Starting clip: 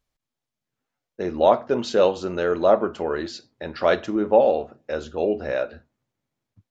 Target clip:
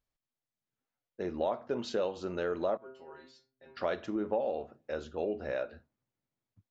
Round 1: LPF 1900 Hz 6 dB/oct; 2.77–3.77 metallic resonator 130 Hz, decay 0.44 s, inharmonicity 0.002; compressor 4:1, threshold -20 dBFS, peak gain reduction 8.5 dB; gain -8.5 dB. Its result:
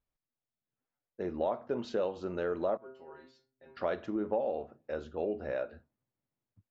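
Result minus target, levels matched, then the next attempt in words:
8000 Hz band -8.0 dB
LPF 6900 Hz 6 dB/oct; 2.77–3.77 metallic resonator 130 Hz, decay 0.44 s, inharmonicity 0.002; compressor 4:1, threshold -20 dBFS, peak gain reduction 8.5 dB; gain -8.5 dB

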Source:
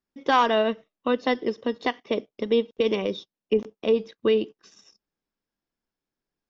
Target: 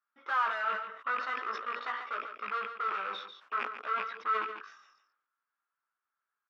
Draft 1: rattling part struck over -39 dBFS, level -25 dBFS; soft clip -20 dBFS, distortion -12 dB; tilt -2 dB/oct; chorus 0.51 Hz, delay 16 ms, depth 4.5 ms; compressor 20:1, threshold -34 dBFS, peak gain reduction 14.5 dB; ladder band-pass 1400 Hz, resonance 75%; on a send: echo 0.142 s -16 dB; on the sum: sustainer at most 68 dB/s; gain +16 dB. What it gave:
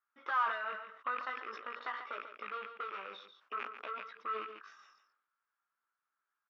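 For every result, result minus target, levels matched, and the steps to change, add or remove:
compressor: peak gain reduction +14.5 dB; soft clip: distortion -7 dB
remove: compressor 20:1, threshold -34 dBFS, peak gain reduction 14.5 dB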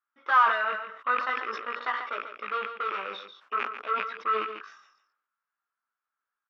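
soft clip: distortion -7 dB
change: soft clip -30.5 dBFS, distortion -4 dB

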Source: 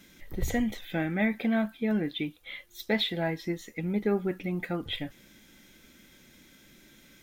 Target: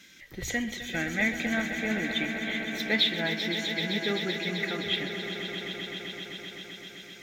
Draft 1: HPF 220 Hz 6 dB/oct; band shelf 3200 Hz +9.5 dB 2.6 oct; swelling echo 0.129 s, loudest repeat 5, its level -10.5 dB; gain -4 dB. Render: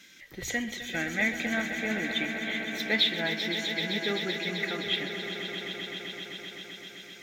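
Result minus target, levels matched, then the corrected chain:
125 Hz band -2.5 dB
HPF 92 Hz 6 dB/oct; band shelf 3200 Hz +9.5 dB 2.6 oct; swelling echo 0.129 s, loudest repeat 5, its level -10.5 dB; gain -4 dB

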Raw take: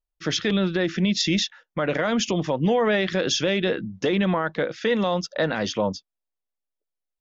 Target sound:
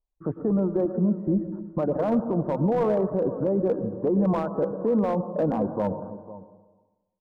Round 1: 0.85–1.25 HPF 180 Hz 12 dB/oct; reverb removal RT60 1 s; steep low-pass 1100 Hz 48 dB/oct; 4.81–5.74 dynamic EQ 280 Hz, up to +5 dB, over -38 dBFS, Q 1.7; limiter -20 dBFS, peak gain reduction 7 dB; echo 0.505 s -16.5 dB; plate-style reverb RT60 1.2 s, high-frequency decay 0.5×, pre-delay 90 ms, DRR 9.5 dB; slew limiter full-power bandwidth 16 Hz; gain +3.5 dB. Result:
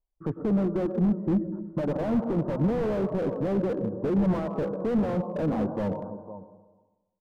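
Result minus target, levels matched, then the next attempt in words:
slew limiter: distortion +18 dB
0.85–1.25 HPF 180 Hz 12 dB/oct; reverb removal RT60 1 s; steep low-pass 1100 Hz 48 dB/oct; 4.81–5.74 dynamic EQ 280 Hz, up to +5 dB, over -38 dBFS, Q 1.7; limiter -20 dBFS, peak gain reduction 7 dB; echo 0.505 s -16.5 dB; plate-style reverb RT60 1.2 s, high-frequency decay 0.5×, pre-delay 90 ms, DRR 9.5 dB; slew limiter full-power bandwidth 41.5 Hz; gain +3.5 dB

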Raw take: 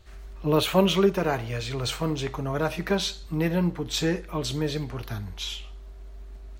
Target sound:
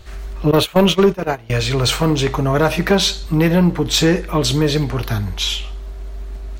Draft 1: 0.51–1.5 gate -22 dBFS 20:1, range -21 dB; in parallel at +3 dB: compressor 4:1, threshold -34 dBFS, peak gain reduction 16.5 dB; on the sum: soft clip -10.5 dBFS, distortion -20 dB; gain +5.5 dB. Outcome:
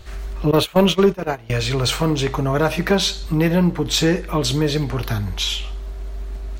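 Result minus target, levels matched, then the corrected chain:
compressor: peak gain reduction +9 dB
0.51–1.5 gate -22 dBFS 20:1, range -21 dB; in parallel at +3 dB: compressor 4:1, threshold -22 dBFS, peak gain reduction 7.5 dB; on the sum: soft clip -10.5 dBFS, distortion -16 dB; gain +5.5 dB

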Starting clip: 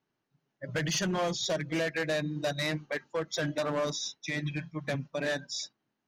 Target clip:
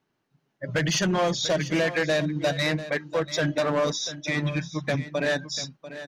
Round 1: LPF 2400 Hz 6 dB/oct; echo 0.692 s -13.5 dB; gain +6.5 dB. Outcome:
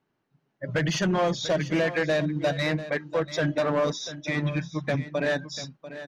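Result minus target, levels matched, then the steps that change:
8000 Hz band -5.5 dB
change: LPF 7100 Hz 6 dB/oct

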